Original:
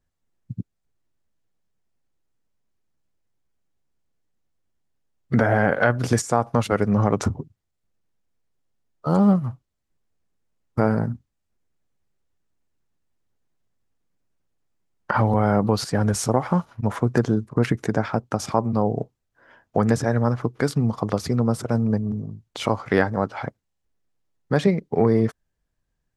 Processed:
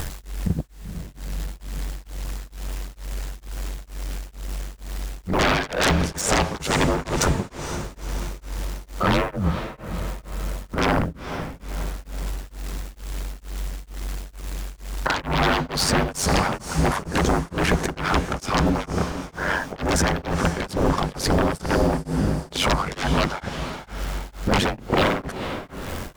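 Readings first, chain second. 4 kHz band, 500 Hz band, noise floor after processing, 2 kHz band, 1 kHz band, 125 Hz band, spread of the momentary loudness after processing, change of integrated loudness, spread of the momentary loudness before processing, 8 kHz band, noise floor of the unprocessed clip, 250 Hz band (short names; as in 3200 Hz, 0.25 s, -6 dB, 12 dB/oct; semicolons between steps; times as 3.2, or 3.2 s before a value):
+11.0 dB, -1.5 dB, -46 dBFS, +4.5 dB, +2.5 dB, -2.0 dB, 14 LU, -2.5 dB, 12 LU, +6.5 dB, -77 dBFS, -2.5 dB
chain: G.711 law mismatch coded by mu; pre-echo 35 ms -16 dB; ring modulator 47 Hz; upward compressor, threshold -32 dBFS; sine folder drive 19 dB, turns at -4 dBFS; compressor 3:1, threshold -16 dBFS, peak gain reduction 7.5 dB; on a send: diffused feedback echo 0.476 s, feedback 53%, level -10 dB; on the sum: beating tremolo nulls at 2.2 Hz; gain -3 dB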